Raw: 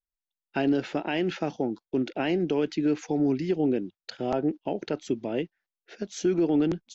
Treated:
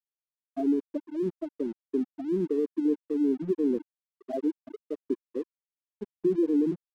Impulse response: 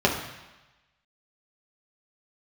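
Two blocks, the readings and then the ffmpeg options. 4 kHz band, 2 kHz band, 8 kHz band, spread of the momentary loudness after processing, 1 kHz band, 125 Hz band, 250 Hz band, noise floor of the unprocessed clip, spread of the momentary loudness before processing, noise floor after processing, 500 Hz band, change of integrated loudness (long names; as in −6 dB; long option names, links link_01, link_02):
below −20 dB, below −15 dB, can't be measured, 13 LU, below −10 dB, −8.5 dB, −1.5 dB, below −85 dBFS, 8 LU, below −85 dBFS, −2.5 dB, −2.0 dB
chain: -af "afftfilt=real='re*gte(hypot(re,im),0.282)':imag='im*gte(hypot(re,im),0.282)':win_size=1024:overlap=0.75,aeval=exprs='sgn(val(0))*max(abs(val(0))-0.00316,0)':channel_layout=same"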